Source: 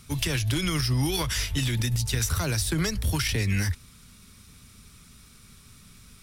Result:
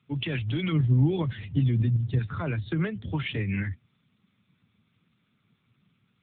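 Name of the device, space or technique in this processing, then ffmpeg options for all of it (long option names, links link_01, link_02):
mobile call with aggressive noise cancelling: -filter_complex "[0:a]asettb=1/sr,asplit=3[link_01][link_02][link_03];[link_01]atrim=end=0.724[link_04];[link_02]atrim=start=0.72:end=2.19,asetpts=PTS-STARTPTS,afade=type=in:duration=0.004:curve=qsin,afade=type=out:start_time=1.466:duration=0.004:curve=qsin,tiltshelf=frequency=690:gain=6[link_05];[link_03]atrim=start=2.186[link_06];[link_04][link_05]acrossfade=duration=0.004:curve1=hsin:curve2=qsin[link_07];[link_07][link_06]acrossfade=duration=0.004:curve1=qsin:curve2=hsin,highpass=frequency=100:width=0.5412,highpass=frequency=100:width=1.3066,afftdn=noise_reduction=13:noise_floor=-35" -ar 8000 -c:a libopencore_amrnb -b:a 7950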